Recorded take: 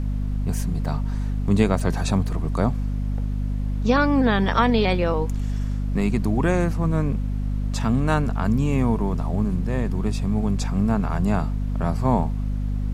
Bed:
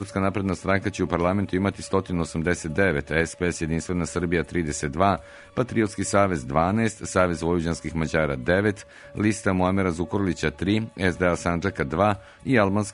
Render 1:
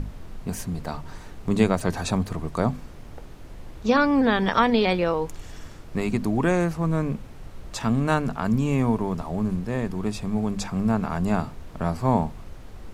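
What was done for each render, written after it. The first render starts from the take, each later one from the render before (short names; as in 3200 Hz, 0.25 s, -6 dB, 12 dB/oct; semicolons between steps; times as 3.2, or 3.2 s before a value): notches 50/100/150/200/250 Hz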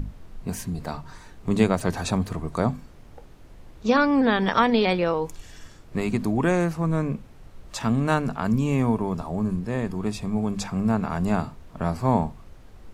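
noise print and reduce 6 dB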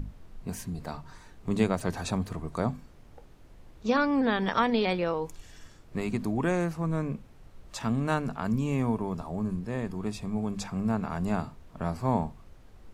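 gain -5.5 dB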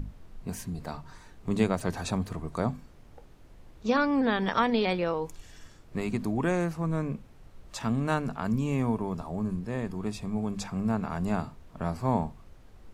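nothing audible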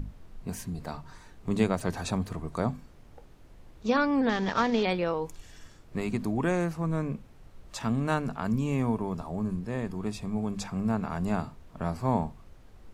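4.29–4.83 CVSD 32 kbps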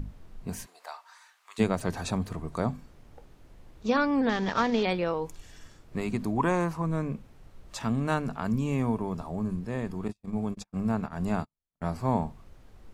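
0.65–1.58 HPF 570 Hz -> 1200 Hz 24 dB/oct; 6.36–6.82 bell 1000 Hz +12.5 dB 0.4 oct; 10.08–11.84 gate -34 dBFS, range -46 dB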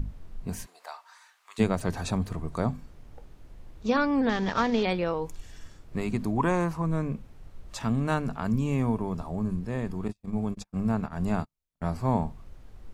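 low shelf 96 Hz +6.5 dB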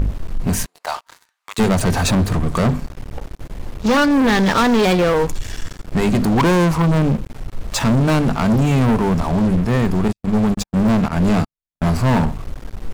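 sample leveller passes 5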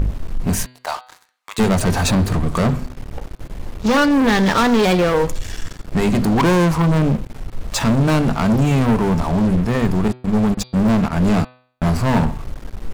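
de-hum 125.9 Hz, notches 38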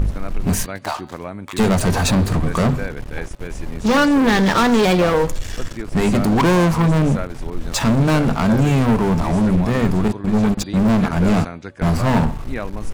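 add bed -8.5 dB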